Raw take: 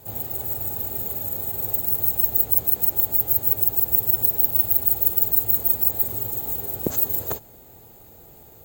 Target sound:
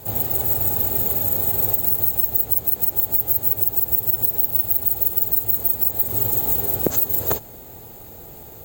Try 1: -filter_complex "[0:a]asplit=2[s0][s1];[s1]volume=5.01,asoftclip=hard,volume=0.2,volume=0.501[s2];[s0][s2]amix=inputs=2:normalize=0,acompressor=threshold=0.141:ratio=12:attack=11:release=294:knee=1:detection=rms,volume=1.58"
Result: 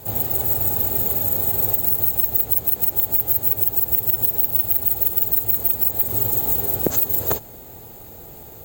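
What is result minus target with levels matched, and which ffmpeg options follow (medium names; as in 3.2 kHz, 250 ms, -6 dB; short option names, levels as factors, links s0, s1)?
overload inside the chain: distortion +22 dB
-filter_complex "[0:a]asplit=2[s0][s1];[s1]volume=2.11,asoftclip=hard,volume=0.473,volume=0.501[s2];[s0][s2]amix=inputs=2:normalize=0,acompressor=threshold=0.141:ratio=12:attack=11:release=294:knee=1:detection=rms,volume=1.58"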